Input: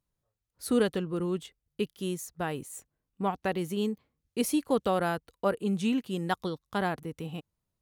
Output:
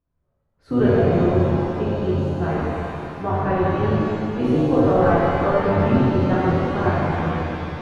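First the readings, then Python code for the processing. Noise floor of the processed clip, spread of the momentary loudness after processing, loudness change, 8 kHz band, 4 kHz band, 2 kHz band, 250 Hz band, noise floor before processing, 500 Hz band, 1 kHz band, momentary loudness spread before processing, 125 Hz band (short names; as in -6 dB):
-71 dBFS, 9 LU, +11.0 dB, under -10 dB, +1.0 dB, +9.0 dB, +10.5 dB, -85 dBFS, +12.0 dB, +11.5 dB, 13 LU, +17.5 dB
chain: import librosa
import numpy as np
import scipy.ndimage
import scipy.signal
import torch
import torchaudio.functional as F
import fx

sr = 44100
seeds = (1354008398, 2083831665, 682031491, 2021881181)

y = fx.octave_divider(x, sr, octaves=1, level_db=-2.0)
y = scipy.signal.sosfilt(scipy.signal.butter(2, 1600.0, 'lowpass', fs=sr, output='sos'), y)
y = fx.rev_shimmer(y, sr, seeds[0], rt60_s=2.9, semitones=7, shimmer_db=-8, drr_db=-9.5)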